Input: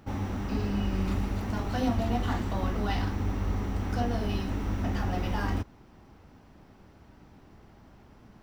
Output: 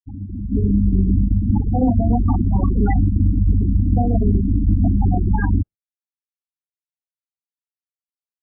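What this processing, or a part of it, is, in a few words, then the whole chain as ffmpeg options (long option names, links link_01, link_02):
low-bitrate web radio: -filter_complex "[0:a]asplit=3[link_01][link_02][link_03];[link_01]afade=type=out:start_time=3.2:duration=0.02[link_04];[link_02]aemphasis=mode=reproduction:type=50fm,afade=type=in:start_time=3.2:duration=0.02,afade=type=out:start_time=4.43:duration=0.02[link_05];[link_03]afade=type=in:start_time=4.43:duration=0.02[link_06];[link_04][link_05][link_06]amix=inputs=3:normalize=0,bandreject=frequency=590:width=12,afftfilt=real='re*gte(hypot(re,im),0.1)':imag='im*gte(hypot(re,im),0.1)':win_size=1024:overlap=0.75,adynamicequalizer=threshold=0.00447:dfrequency=610:dqfactor=1.1:tfrequency=610:tqfactor=1.1:attack=5:release=100:ratio=0.375:range=3:mode=cutabove:tftype=bell,dynaudnorm=framelen=170:gausssize=7:maxgain=15.5dB,alimiter=limit=-9dB:level=0:latency=1:release=257,volume=2dB" -ar 8000 -c:a libmp3lame -b:a 24k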